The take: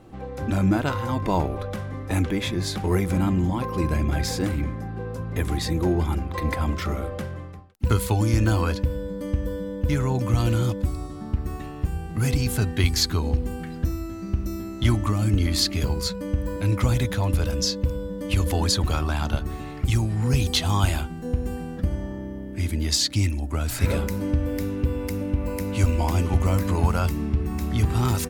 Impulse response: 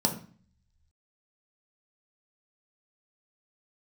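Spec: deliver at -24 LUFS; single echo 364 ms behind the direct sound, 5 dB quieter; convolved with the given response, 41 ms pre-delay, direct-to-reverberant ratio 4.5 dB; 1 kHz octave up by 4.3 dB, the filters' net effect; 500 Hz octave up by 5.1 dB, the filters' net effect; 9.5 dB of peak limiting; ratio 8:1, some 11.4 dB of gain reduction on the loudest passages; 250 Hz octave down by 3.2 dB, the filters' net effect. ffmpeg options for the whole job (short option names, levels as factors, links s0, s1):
-filter_complex "[0:a]equalizer=f=250:t=o:g=-7,equalizer=f=500:t=o:g=7,equalizer=f=1000:t=o:g=3.5,acompressor=threshold=0.0447:ratio=8,alimiter=level_in=1.06:limit=0.0631:level=0:latency=1,volume=0.944,aecho=1:1:364:0.562,asplit=2[s0][s1];[1:a]atrim=start_sample=2205,adelay=41[s2];[s1][s2]afir=irnorm=-1:irlink=0,volume=0.211[s3];[s0][s3]amix=inputs=2:normalize=0,volume=1.88"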